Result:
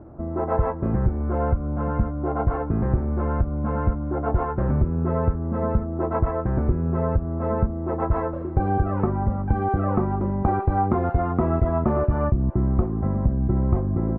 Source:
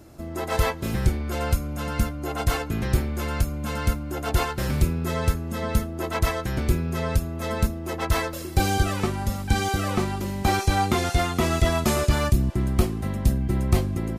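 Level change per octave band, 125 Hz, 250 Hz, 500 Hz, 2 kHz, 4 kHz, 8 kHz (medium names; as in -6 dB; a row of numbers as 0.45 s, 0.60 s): +2.0 dB, +2.5 dB, +3.0 dB, -10.0 dB, under -30 dB, under -40 dB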